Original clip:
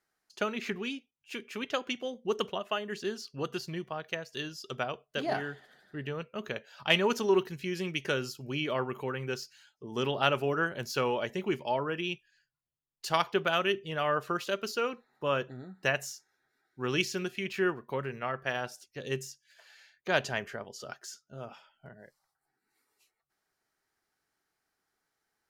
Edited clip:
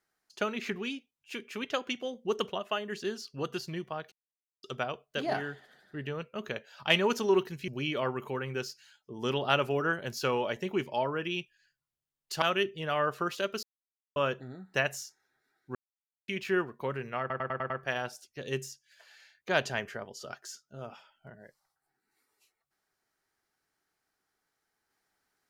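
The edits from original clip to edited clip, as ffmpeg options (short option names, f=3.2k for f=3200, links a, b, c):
-filter_complex "[0:a]asplit=14[a][b][c][d][e][f][g][h][i][j][k][l][m][n];[a]atrim=end=4.12,asetpts=PTS-STARTPTS,afade=t=out:st=4.116:d=0.004:c=hsin[o];[b]atrim=start=4.12:end=4.63,asetpts=PTS-STARTPTS,volume=0[p];[c]atrim=start=4.63:end=7.682,asetpts=PTS-STARTPTS,afade=t=in:d=0.004:c=hsin[q];[d]atrim=start=8.408:end=13.152[r];[e]atrim=start=13.508:end=14.72,asetpts=PTS-STARTPTS,afade=t=out:st=1.208:d=0.004:c=hsin[s];[f]atrim=start=14.72:end=15.25,asetpts=PTS-STARTPTS,volume=0[t];[g]atrim=start=15.25:end=16.84,asetpts=PTS-STARTPTS,afade=t=in:d=0.004:c=hsin,afade=t=out:st=1.586:d=0.004:c=hsin[u];[h]atrim=start=16.84:end=17.37,asetpts=PTS-STARTPTS,volume=0[v];[i]atrim=start=17.37:end=18.392,asetpts=PTS-STARTPTS,afade=t=in:d=0.004:c=hsin[w];[j]atrim=start=18.288:end=18.392[x];[k]atrim=start=18.288:end=18.392[y];[l]atrim=start=18.288:end=18.392[z];[m]atrim=start=18.288:end=18.392[aa];[n]atrim=start=18.288[ab];[o][p][q]concat=n=3:v=0:a=1[ac];[ac][r]acrossfade=d=0.004:c1=hsin:c2=hsin[ad];[s][t][u][v][w]concat=n=5:v=0:a=1[ae];[ad][ae]acrossfade=d=0.004:c1=hsin:c2=hsin[af];[af][x]acrossfade=d=0.004:c1=hsin:c2=hsin[ag];[ag][y]acrossfade=d=0.004:c1=hsin:c2=hsin[ah];[ah][z]acrossfade=d=0.004:c1=hsin:c2=hsin[ai];[ai][aa]acrossfade=d=0.004:c1=hsin:c2=hsin[aj];[aj][ab]acrossfade=d=0.004:c1=hsin:c2=hsin"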